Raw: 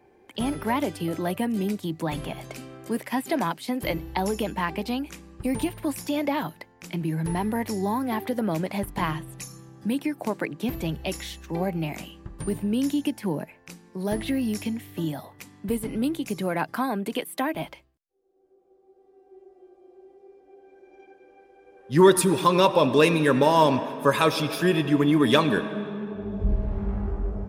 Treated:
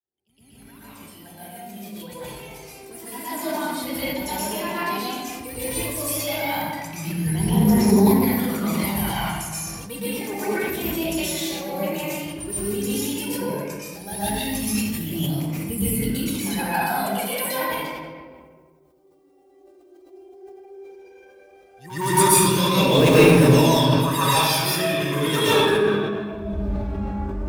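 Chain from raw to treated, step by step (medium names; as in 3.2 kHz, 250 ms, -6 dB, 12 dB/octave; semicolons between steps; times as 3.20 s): fade-in on the opening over 6.03 s; high-pass 65 Hz 24 dB/octave; bass shelf 110 Hz +9.5 dB; phaser 0.13 Hz, delay 3.7 ms, feedback 74%; pre-emphasis filter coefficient 0.8; in parallel at -11 dB: integer overflow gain 19 dB; on the sum: pre-echo 114 ms -13 dB; reverberation RT60 1.6 s, pre-delay 116 ms, DRR -10.5 dB; decay stretcher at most 31 dB/s; trim -1.5 dB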